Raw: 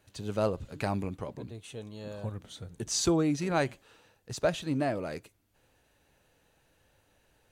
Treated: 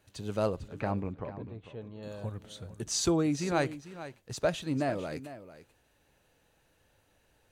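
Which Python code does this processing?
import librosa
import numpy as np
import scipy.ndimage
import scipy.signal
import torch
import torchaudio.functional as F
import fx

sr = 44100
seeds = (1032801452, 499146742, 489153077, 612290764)

y = fx.lowpass(x, sr, hz=2100.0, slope=12, at=(0.68, 2.03))
y = y + 10.0 ** (-14.0 / 20.0) * np.pad(y, (int(447 * sr / 1000.0), 0))[:len(y)]
y = y * 10.0 ** (-1.0 / 20.0)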